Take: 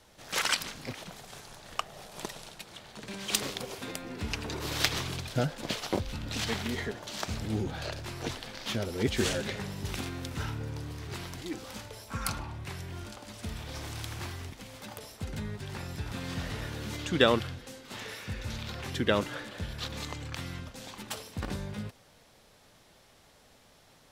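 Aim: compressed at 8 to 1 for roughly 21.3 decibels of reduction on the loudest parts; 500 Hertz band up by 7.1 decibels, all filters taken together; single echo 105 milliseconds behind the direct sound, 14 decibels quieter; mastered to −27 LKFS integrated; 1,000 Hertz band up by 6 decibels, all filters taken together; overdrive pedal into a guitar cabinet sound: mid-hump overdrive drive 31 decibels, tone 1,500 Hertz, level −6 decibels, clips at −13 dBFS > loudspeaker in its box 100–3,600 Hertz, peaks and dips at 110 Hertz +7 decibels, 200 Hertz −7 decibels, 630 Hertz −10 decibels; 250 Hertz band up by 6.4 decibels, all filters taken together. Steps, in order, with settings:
parametric band 250 Hz +8 dB
parametric band 500 Hz +8 dB
parametric band 1,000 Hz +6.5 dB
downward compressor 8 to 1, threshold −32 dBFS
single-tap delay 105 ms −14 dB
mid-hump overdrive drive 31 dB, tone 1,500 Hz, level −6 dB, clips at −13 dBFS
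loudspeaker in its box 100–3,600 Hz, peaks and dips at 110 Hz +7 dB, 200 Hz −7 dB, 630 Hz −10 dB
level −1 dB

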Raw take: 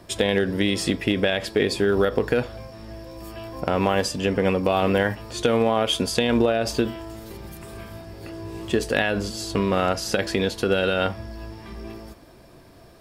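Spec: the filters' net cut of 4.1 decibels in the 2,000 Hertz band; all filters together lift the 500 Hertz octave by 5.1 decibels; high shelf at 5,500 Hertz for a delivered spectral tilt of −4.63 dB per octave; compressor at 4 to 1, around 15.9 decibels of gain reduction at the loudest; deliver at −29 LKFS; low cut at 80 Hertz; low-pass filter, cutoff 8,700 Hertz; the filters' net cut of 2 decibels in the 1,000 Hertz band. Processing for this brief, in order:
high-pass filter 80 Hz
low-pass filter 8,700 Hz
parametric band 500 Hz +7.5 dB
parametric band 1,000 Hz −6 dB
parametric band 2,000 Hz −4.5 dB
high-shelf EQ 5,500 Hz +4 dB
downward compressor 4 to 1, threshold −32 dBFS
level +5.5 dB

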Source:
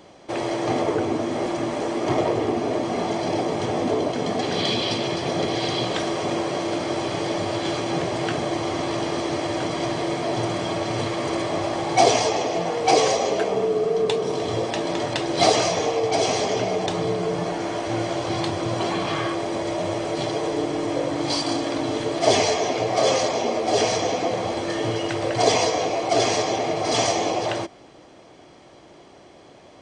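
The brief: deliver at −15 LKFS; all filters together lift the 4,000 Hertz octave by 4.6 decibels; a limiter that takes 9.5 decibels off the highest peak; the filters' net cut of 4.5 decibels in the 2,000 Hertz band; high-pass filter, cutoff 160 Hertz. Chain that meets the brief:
high-pass filter 160 Hz
parametric band 2,000 Hz −8 dB
parametric band 4,000 Hz +8 dB
level +9 dB
brickwall limiter −3 dBFS

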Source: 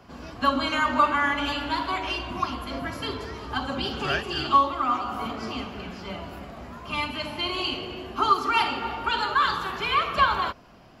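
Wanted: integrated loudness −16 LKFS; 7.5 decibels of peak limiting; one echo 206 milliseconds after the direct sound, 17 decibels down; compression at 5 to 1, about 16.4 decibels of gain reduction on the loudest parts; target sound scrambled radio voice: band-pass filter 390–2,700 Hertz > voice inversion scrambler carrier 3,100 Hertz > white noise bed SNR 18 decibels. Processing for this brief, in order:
downward compressor 5 to 1, threshold −34 dBFS
brickwall limiter −29 dBFS
band-pass filter 390–2,700 Hz
single-tap delay 206 ms −17 dB
voice inversion scrambler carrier 3,100 Hz
white noise bed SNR 18 dB
level +22.5 dB

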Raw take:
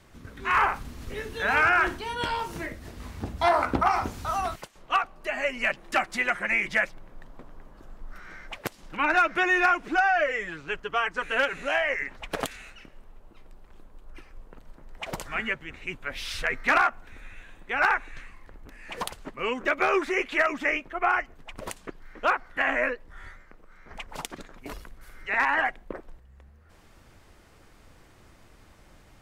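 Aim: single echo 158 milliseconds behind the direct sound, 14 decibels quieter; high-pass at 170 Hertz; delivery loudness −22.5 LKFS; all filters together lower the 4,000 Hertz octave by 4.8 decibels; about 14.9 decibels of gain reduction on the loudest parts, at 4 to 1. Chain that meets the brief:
high-pass filter 170 Hz
parametric band 4,000 Hz −7.5 dB
downward compressor 4 to 1, threshold −37 dBFS
single-tap delay 158 ms −14 dB
level +17 dB

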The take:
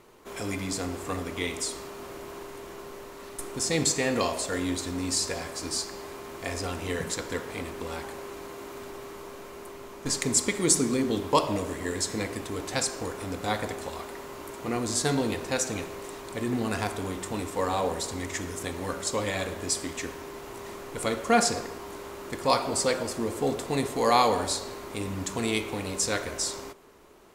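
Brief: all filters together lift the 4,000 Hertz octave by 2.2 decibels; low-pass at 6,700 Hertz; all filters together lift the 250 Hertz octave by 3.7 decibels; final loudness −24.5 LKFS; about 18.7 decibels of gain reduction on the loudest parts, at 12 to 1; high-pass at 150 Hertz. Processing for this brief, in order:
high-pass filter 150 Hz
low-pass filter 6,700 Hz
parametric band 250 Hz +5 dB
parametric band 4,000 Hz +3.5 dB
downward compressor 12 to 1, threshold −34 dBFS
level +14 dB

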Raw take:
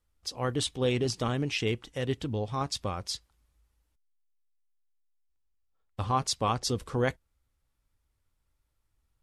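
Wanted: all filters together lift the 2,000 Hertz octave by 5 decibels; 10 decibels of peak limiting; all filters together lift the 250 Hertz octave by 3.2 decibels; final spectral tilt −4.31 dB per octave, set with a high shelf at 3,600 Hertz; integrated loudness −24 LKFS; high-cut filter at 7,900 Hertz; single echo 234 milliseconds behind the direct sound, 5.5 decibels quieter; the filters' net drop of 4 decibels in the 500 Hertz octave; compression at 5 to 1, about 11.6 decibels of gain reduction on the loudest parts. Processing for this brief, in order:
low-pass filter 7,900 Hz
parametric band 250 Hz +5.5 dB
parametric band 500 Hz −7 dB
parametric band 2,000 Hz +4.5 dB
high-shelf EQ 3,600 Hz +7 dB
downward compressor 5 to 1, threshold −35 dBFS
brickwall limiter −32.5 dBFS
single-tap delay 234 ms −5.5 dB
level +18 dB

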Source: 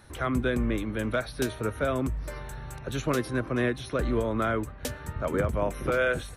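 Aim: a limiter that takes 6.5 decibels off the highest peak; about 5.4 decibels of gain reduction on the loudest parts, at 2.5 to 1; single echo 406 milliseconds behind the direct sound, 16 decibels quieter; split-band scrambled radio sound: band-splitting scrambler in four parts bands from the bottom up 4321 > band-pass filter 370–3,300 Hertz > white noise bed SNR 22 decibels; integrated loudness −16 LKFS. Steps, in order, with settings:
downward compressor 2.5 to 1, threshold −30 dBFS
brickwall limiter −25 dBFS
single-tap delay 406 ms −16 dB
band-splitting scrambler in four parts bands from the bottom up 4321
band-pass filter 370–3,300 Hz
white noise bed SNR 22 dB
level +22.5 dB

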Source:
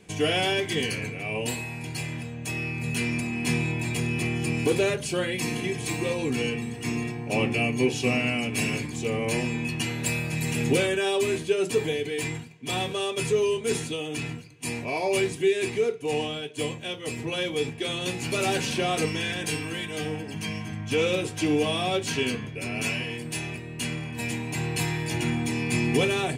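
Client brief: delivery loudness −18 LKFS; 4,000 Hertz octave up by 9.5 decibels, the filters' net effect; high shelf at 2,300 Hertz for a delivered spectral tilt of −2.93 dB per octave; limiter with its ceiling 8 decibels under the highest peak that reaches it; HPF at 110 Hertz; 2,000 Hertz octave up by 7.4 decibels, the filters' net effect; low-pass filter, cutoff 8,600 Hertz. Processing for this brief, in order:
high-pass filter 110 Hz
low-pass filter 8,600 Hz
parametric band 2,000 Hz +3.5 dB
high-shelf EQ 2,300 Hz +5 dB
parametric band 4,000 Hz +7 dB
level +6.5 dB
brickwall limiter −8.5 dBFS

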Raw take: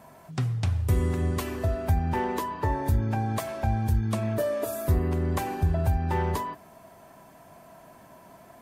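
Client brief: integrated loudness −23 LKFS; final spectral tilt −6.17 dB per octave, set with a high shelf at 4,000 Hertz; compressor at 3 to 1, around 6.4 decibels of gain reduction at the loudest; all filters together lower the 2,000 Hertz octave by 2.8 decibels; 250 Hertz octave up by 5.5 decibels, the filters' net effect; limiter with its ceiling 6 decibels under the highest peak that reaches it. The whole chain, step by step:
parametric band 250 Hz +7 dB
parametric band 2,000 Hz −5.5 dB
high-shelf EQ 4,000 Hz +9 dB
downward compressor 3 to 1, threshold −26 dBFS
level +8 dB
brickwall limiter −13.5 dBFS

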